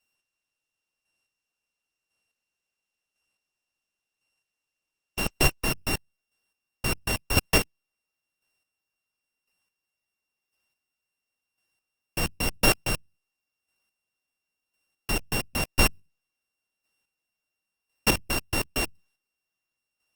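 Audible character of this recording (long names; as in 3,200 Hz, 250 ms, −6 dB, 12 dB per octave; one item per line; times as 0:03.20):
a buzz of ramps at a fixed pitch in blocks of 16 samples
chopped level 0.95 Hz, depth 60%, duty 20%
Opus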